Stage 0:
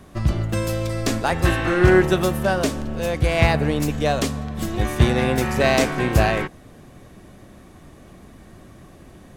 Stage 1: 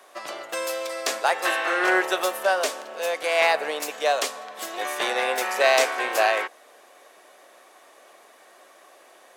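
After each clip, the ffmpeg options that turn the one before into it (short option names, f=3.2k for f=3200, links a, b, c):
-af "highpass=f=520:w=0.5412,highpass=f=520:w=1.3066,volume=1dB"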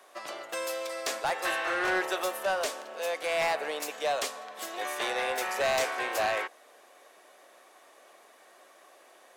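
-af "asoftclip=type=tanh:threshold=-17.5dB,volume=-4.5dB"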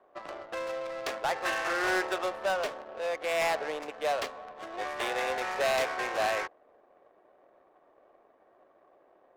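-af "adynamicsmooth=sensitivity=6:basefreq=670"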